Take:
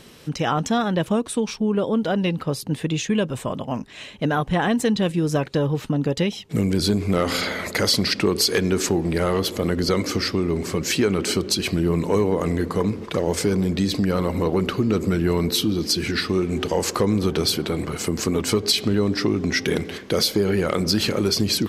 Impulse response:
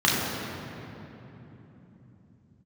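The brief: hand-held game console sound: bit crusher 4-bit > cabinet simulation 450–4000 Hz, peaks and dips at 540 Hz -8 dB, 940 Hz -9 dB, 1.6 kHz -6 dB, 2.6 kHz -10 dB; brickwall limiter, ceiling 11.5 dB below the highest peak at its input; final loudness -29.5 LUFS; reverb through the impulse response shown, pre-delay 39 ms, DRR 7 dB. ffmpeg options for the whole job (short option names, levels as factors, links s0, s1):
-filter_complex "[0:a]alimiter=limit=0.112:level=0:latency=1,asplit=2[s0][s1];[1:a]atrim=start_sample=2205,adelay=39[s2];[s1][s2]afir=irnorm=-1:irlink=0,volume=0.0531[s3];[s0][s3]amix=inputs=2:normalize=0,acrusher=bits=3:mix=0:aa=0.000001,highpass=450,equalizer=f=540:t=q:w=4:g=-8,equalizer=f=940:t=q:w=4:g=-9,equalizer=f=1600:t=q:w=4:g=-6,equalizer=f=2600:t=q:w=4:g=-10,lowpass=f=4000:w=0.5412,lowpass=f=4000:w=1.3066,volume=1.41"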